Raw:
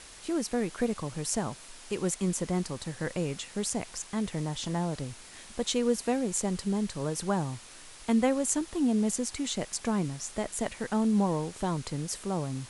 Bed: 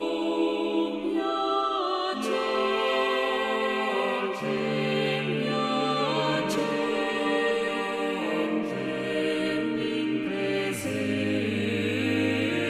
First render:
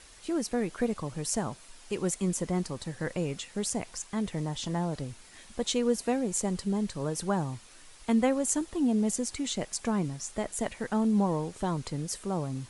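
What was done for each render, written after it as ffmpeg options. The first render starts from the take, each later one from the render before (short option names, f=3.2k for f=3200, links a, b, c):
-af "afftdn=nr=6:nf=-49"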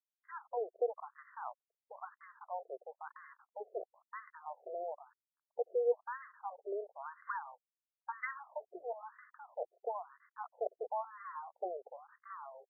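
-af "aeval=exprs='sgn(val(0))*max(abs(val(0))-0.00944,0)':c=same,afftfilt=real='re*between(b*sr/1024,500*pow(1500/500,0.5+0.5*sin(2*PI*1*pts/sr))/1.41,500*pow(1500/500,0.5+0.5*sin(2*PI*1*pts/sr))*1.41)':imag='im*between(b*sr/1024,500*pow(1500/500,0.5+0.5*sin(2*PI*1*pts/sr))/1.41,500*pow(1500/500,0.5+0.5*sin(2*PI*1*pts/sr))*1.41)':win_size=1024:overlap=0.75"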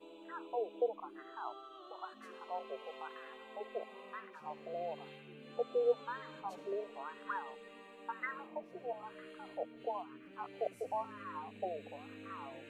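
-filter_complex "[1:a]volume=-26.5dB[a];[0:a][a]amix=inputs=2:normalize=0"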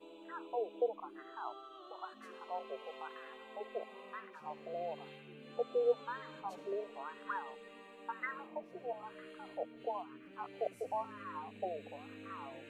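-af anull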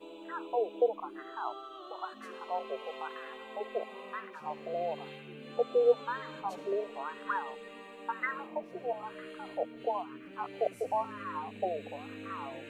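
-af "volume=6.5dB"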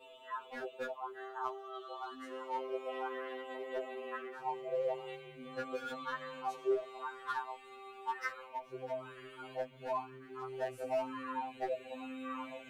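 -af "asoftclip=type=hard:threshold=-27dB,afftfilt=real='re*2.45*eq(mod(b,6),0)':imag='im*2.45*eq(mod(b,6),0)':win_size=2048:overlap=0.75"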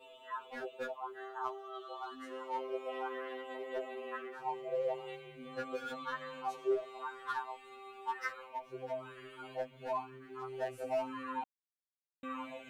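-filter_complex "[0:a]asplit=3[a][b][c];[a]atrim=end=11.44,asetpts=PTS-STARTPTS,afade=t=out:st=11.436:d=0.004:c=hsin[d];[b]atrim=start=11.44:end=12.23,asetpts=PTS-STARTPTS,volume=0[e];[c]atrim=start=12.23,asetpts=PTS-STARTPTS,afade=t=in:d=0.004:c=hsin[f];[d][e][f]concat=n=3:v=0:a=1"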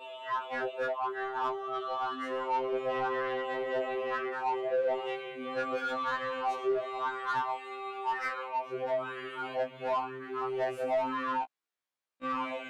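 -filter_complex "[0:a]asplit=2[a][b];[b]highpass=f=720:p=1,volume=21dB,asoftclip=type=tanh:threshold=-23.5dB[c];[a][c]amix=inputs=2:normalize=0,lowpass=f=1.6k:p=1,volume=-6dB,afftfilt=real='re*1.73*eq(mod(b,3),0)':imag='im*1.73*eq(mod(b,3),0)':win_size=2048:overlap=0.75"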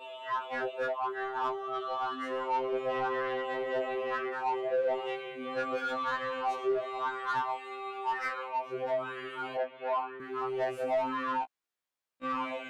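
-filter_complex "[0:a]asettb=1/sr,asplit=3[a][b][c];[a]atrim=end=9.574[d];[b]atrim=start=9.57:end=10.2,asetpts=PTS-STARTPTS,afade=t=in:d=0.004:c=qsin,afade=t=out:st=0.626:d=0.004:c=qsin,highpass=370,lowpass=2.9k[e];[c]atrim=start=10.196[f];[d][e]acrossfade=d=0.004:c1=hsin:c2=qsin[g];[g][f]acrossfade=d=0.004:c1=qsin:c2=hsin"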